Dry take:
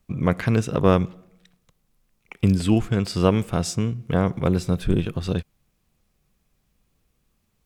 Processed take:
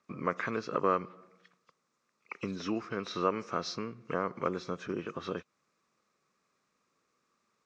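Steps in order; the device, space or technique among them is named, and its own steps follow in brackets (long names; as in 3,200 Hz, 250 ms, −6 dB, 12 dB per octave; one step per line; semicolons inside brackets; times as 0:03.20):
hearing aid with frequency lowering (hearing-aid frequency compression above 2,500 Hz 1.5 to 1; downward compressor 2 to 1, threshold −28 dBFS, peak gain reduction 9.5 dB; loudspeaker in its box 360–6,200 Hz, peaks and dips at 750 Hz −7 dB, 1,200 Hz +9 dB, 3,100 Hz −9 dB, 4,500 Hz −4 dB)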